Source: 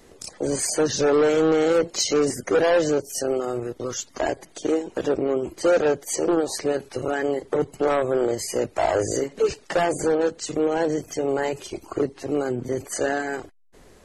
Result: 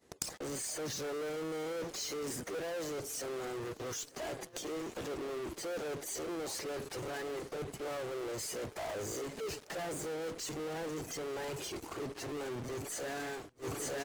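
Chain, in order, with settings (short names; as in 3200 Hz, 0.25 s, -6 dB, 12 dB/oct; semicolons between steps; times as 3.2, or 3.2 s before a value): expander -39 dBFS; HPF 63 Hz 12 dB/oct; in parallel at -4 dB: fuzz box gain 47 dB, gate -52 dBFS; on the sum: feedback echo 0.9 s, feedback 55%, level -22.5 dB; flipped gate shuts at -20 dBFS, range -41 dB; reverse; compressor 16:1, threshold -54 dBFS, peak gain reduction 21.5 dB; reverse; gain +18 dB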